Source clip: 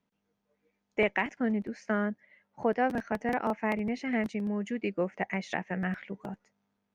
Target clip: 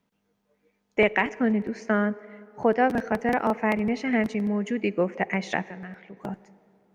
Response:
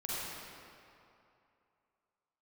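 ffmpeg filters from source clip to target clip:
-filter_complex "[0:a]asettb=1/sr,asplit=3[a][b][c];[a]atrim=end=5.644[d];[b]atrim=start=5.64:end=6.17,asetpts=PTS-STARTPTS,afade=t=in:d=0.004:c=qsin,afade=t=out:st=0.526:d=0.004:c=qsin,acompressor=threshold=-54dB:ratio=2[e];[c]atrim=start=6.166[f];[d][e]acrossfade=d=0.004:c1=hsin:c2=qsin[g];[g][f]acrossfade=d=0.004:c1=qsin:c2=hsin,asplit=2[h][i];[i]equalizer=f=440:w=4.1:g=10[j];[1:a]atrim=start_sample=2205[k];[j][k]afir=irnorm=-1:irlink=0,volume=-23.5dB[l];[h][l]amix=inputs=2:normalize=0,volume=5.5dB"

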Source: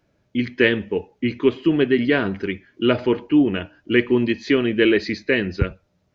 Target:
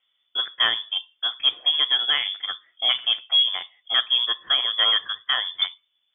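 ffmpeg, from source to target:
-af "asoftclip=type=tanh:threshold=-12dB,aeval=exprs='0.251*(cos(1*acos(clip(val(0)/0.251,-1,1)))-cos(1*PI/2))+0.0398*(cos(3*acos(clip(val(0)/0.251,-1,1)))-cos(3*PI/2))':c=same,lowpass=f=3.1k:t=q:w=0.5098,lowpass=f=3.1k:t=q:w=0.6013,lowpass=f=3.1k:t=q:w=0.9,lowpass=f=3.1k:t=q:w=2.563,afreqshift=-3600"

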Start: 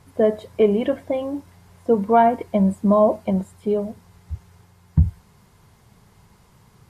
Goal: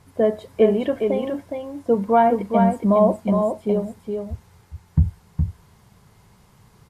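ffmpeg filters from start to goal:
-af "aecho=1:1:415:0.562,volume=-1dB"

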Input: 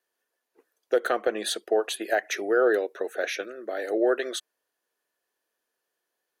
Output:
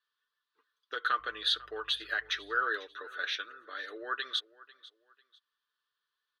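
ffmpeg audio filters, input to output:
-filter_complex "[0:a]aecho=1:1:6.8:0.48,asettb=1/sr,asplit=3[a][b][c];[a]atrim=end=1.194[d];[b]atrim=start=1.19:end=2.63,asetpts=PTS-STARTPTS,afade=t=in:d=0.004:c=qsin,afade=t=out:st=1.436:d=0.004:c=qsin,aeval=exprs='val(0)+0.00178*(sin(2*PI*50*n/s)+sin(2*PI*2*50*n/s)/2+sin(2*PI*3*50*n/s)/3+sin(2*PI*4*50*n/s)/4+sin(2*PI*5*50*n/s)/5)':c=same[e];[c]atrim=start=2.626[f];[d][e]acrossfade=d=0.004:c1=hsin:c2=qsin[g];[g][f]acrossfade=d=0.004:c1=qsin:c2=hsin,firequalizer=gain_entry='entry(120,0);entry(190,-13);entry(470,-11);entry(710,-18);entry(1100,11);entry(2300,-1);entry(3500,13);entry(7200,-13)':delay=0.05:min_phase=1,aecho=1:1:496|992:0.0944|0.0283,volume=-8.5dB"

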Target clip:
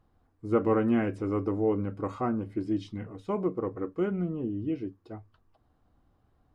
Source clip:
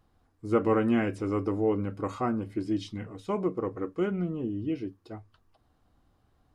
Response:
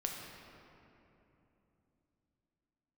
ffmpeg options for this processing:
-af "highshelf=f=2.6k:g=-9.5"

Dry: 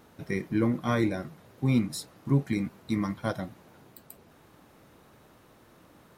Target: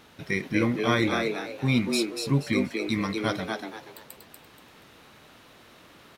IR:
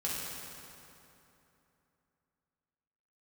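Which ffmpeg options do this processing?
-filter_complex "[0:a]equalizer=f=3.2k:t=o:w=2.1:g=11,asplit=5[a][b][c][d][e];[b]adelay=239,afreqshift=110,volume=-4dB[f];[c]adelay=478,afreqshift=220,volume=-14.5dB[g];[d]adelay=717,afreqshift=330,volume=-24.9dB[h];[e]adelay=956,afreqshift=440,volume=-35.4dB[i];[a][f][g][h][i]amix=inputs=5:normalize=0"

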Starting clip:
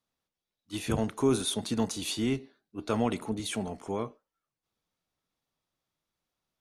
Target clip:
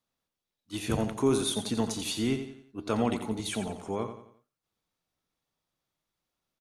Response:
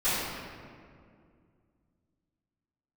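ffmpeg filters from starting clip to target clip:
-af "aecho=1:1:88|176|264|352:0.335|0.137|0.0563|0.0231"

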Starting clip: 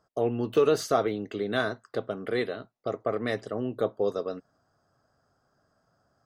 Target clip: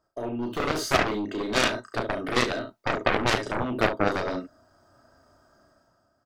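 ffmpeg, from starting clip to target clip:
-af "aecho=1:1:3.2:0.5,aecho=1:1:33|71:0.668|0.398,dynaudnorm=f=120:g=11:m=13dB,aeval=exprs='0.841*(cos(1*acos(clip(val(0)/0.841,-1,1)))-cos(1*PI/2))+0.299*(cos(7*acos(clip(val(0)/0.841,-1,1)))-cos(7*PI/2))+0.0266*(cos(8*acos(clip(val(0)/0.841,-1,1)))-cos(8*PI/2))':c=same,volume=-8dB"

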